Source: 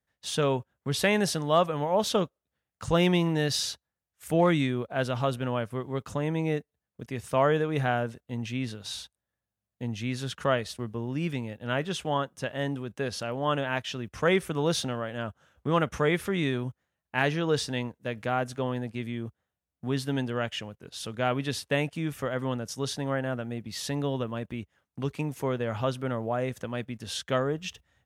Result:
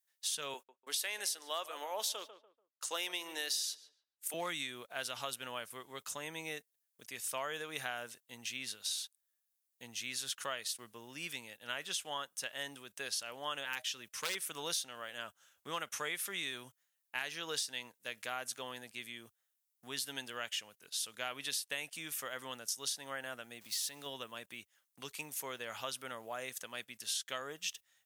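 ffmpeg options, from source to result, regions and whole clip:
-filter_complex "[0:a]asettb=1/sr,asplit=3[a][b][c];[a]atrim=end=0.544[d];[b]atrim=start=0.54:end=4.34,asetpts=PTS-STARTPTS,afade=t=in:d=0.004:c=qsin,afade=t=out:st=3.796:d=0.004:c=qsin,highpass=f=290:w=0.5412,highpass=f=290:w=1.3066,agate=range=-33dB:threshold=-42dB:ratio=3:release=100:detection=peak,asplit=2[e][f];[f]adelay=145,lowpass=f=1.3k:p=1,volume=-15dB,asplit=2[g][h];[h]adelay=145,lowpass=f=1.3k:p=1,volume=0.31,asplit=2[i][j];[j]adelay=145,lowpass=f=1.3k:p=1,volume=0.31[k];[e][g][i][k]amix=inputs=4:normalize=0,atrim=end_sample=167580[l];[c]atrim=start=4.336[m];[d][l]acrossfade=d=0.004:c1=hsin:c2=qsin[n];[n][m]acrossfade=d=0.004:c1=qsin:c2=hsin,asettb=1/sr,asplit=3[o][p][q];[o]atrim=end=13.654[r];[p]atrim=start=13.65:end=14.35,asetpts=PTS-STARTPTS,afade=t=in:d=0.004:c=qsin,afade=t=out:st=0.696:d=0.004:c=qsin,asuperstop=centerf=690:order=20:qfactor=5.4,aeval=exprs='0.112*(abs(mod(val(0)/0.112+3,4)-2)-1)':c=same[s];[q]atrim=start=14.346[t];[r][s]acrossfade=d=0.004:c1=hsin:c2=qsin[u];[u][t]acrossfade=d=0.004:c1=qsin:c2=hsin,asettb=1/sr,asplit=3[v][w][x];[v]atrim=end=23.614[y];[w]atrim=start=23.61:end=24.06,asetpts=PTS-STARTPTS,afade=t=in:d=0.004:c=qsin,afade=t=out:st=0.446:d=0.004:c=qsin,aeval=exprs='val(0)+0.5*0.00422*sgn(val(0))':c=same,acompressor=threshold=-35dB:ratio=1.5:attack=3.2:release=140:knee=1:detection=peak[z];[x]atrim=start=24.056[aa];[y][z]acrossfade=d=0.004:c1=hsin:c2=qsin[ab];[ab][aa]acrossfade=d=0.004:c1=qsin:c2=hsin,aderivative,acompressor=threshold=-42dB:ratio=5,volume=7.5dB"

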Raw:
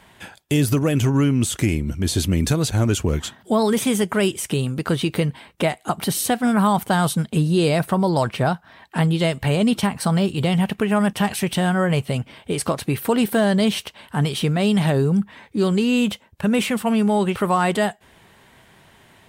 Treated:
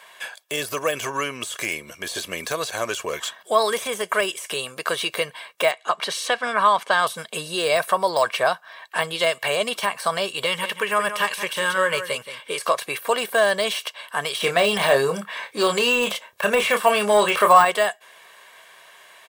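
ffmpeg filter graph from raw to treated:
-filter_complex "[0:a]asettb=1/sr,asplit=3[a][b][c];[a]atrim=end=5.714[d];[b]atrim=start=5.71:end=7.07,asetpts=PTS-STARTPTS,afade=t=in:d=0.004:c=qsin,afade=t=out:st=1.356:d=0.004:c=qsin,highpass=140,lowpass=4.9k,equalizer=f=730:t=o:w=0.21:g=-5.5[e];[c]atrim=start=7.066[f];[d][e]acrossfade=d=0.004:c1=hsin:c2=qsin[g];[g][f]acrossfade=d=0.004:c1=qsin:c2=hsin,asettb=1/sr,asplit=3[h][i][j];[h]atrim=end=10.454[k];[i]atrim=start=10.45:end=12.65,asetpts=PTS-STARTPTS,afade=t=in:d=0.004:c=qsin,afade=t=out:st=2.196:d=0.004:c=qsin,asuperstop=centerf=710:order=4:qfactor=3.5,aecho=1:1:175:0.282,atrim=end_sample=97020[l];[j]atrim=start=12.646[m];[k][l]acrossfade=d=0.004:c1=hsin:c2=qsin[n];[n][m]acrossfade=d=0.004:c1=qsin:c2=hsin,asettb=1/sr,asplit=3[o][p][q];[o]atrim=end=14.414[r];[p]atrim=start=14.41:end=17.65,asetpts=PTS-STARTPTS,afade=t=in:d=0.004:c=qsin,afade=t=out:st=3.236:d=0.004:c=qsin,asplit=2[s][t];[t]adelay=29,volume=-8.5dB[u];[s][u]amix=inputs=2:normalize=0,atrim=end_sample=142884,acontrast=64[v];[q]atrim=start=17.646[w];[r][v]acrossfade=d=0.004:c1=hsin:c2=qsin[x];[x][w]acrossfade=d=0.004:c1=qsin:c2=hsin,highpass=760,deesser=0.65,aecho=1:1:1.8:0.52,volume=5dB"

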